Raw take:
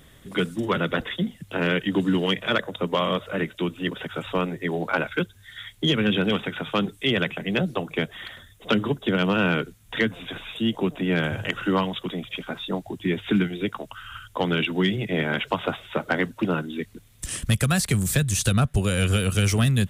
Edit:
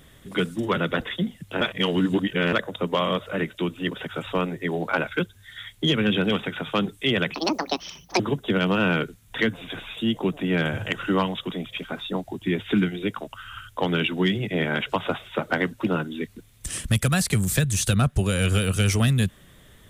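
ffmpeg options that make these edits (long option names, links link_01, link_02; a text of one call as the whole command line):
ffmpeg -i in.wav -filter_complex "[0:a]asplit=5[link_01][link_02][link_03][link_04][link_05];[link_01]atrim=end=1.612[link_06];[link_02]atrim=start=1.608:end=2.532,asetpts=PTS-STARTPTS,areverse[link_07];[link_03]atrim=start=2.528:end=7.344[link_08];[link_04]atrim=start=7.34:end=8.78,asetpts=PTS-STARTPTS,asetrate=74088,aresample=44100[link_09];[link_05]atrim=start=8.776[link_10];[link_06][link_07]acrossfade=duration=0.004:curve1=hsin:curve2=hsin[link_11];[link_11][link_08]acrossfade=duration=0.004:curve1=hsin:curve2=hsin[link_12];[link_12][link_09]acrossfade=duration=0.004:curve1=hsin:curve2=hsin[link_13];[link_13][link_10]acrossfade=duration=0.004:curve1=hsin:curve2=hsin" out.wav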